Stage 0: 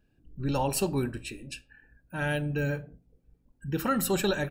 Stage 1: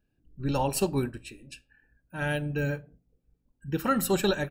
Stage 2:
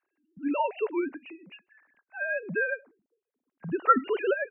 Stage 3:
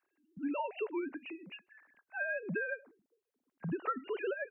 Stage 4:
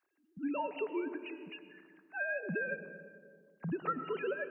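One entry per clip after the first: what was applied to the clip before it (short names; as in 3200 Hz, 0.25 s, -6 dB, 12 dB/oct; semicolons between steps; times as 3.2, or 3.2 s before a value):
upward expander 1.5:1, over -41 dBFS; gain +2.5 dB
sine-wave speech
compressor 8:1, threshold -33 dBFS, peak gain reduction 18.5 dB
reverb RT60 2.1 s, pre-delay 70 ms, DRR 10.5 dB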